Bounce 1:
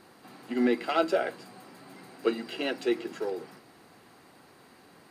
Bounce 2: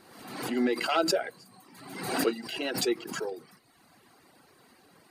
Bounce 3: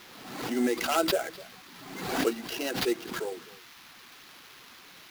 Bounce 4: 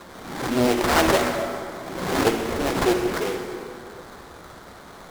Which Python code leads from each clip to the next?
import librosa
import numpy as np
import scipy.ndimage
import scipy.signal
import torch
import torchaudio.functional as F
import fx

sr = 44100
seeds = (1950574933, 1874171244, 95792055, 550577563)

y1 = fx.dereverb_blind(x, sr, rt60_s=1.1)
y1 = fx.high_shelf(y1, sr, hz=5000.0, db=4.5)
y1 = fx.pre_swell(y1, sr, db_per_s=56.0)
y1 = y1 * librosa.db_to_amplitude(-1.5)
y2 = fx.dmg_noise_band(y1, sr, seeds[0], low_hz=960.0, high_hz=4500.0, level_db=-52.0)
y2 = fx.sample_hold(y2, sr, seeds[1], rate_hz=8500.0, jitter_pct=20)
y2 = y2 + 10.0 ** (-20.0 / 20.0) * np.pad(y2, (int(254 * sr / 1000.0), 0))[:len(y2)]
y3 = fx.sample_hold(y2, sr, seeds[2], rate_hz=2700.0, jitter_pct=20)
y3 = fx.rev_plate(y3, sr, seeds[3], rt60_s=2.7, hf_ratio=0.65, predelay_ms=0, drr_db=3.0)
y3 = fx.doppler_dist(y3, sr, depth_ms=0.69)
y3 = y3 * librosa.db_to_amplitude(6.5)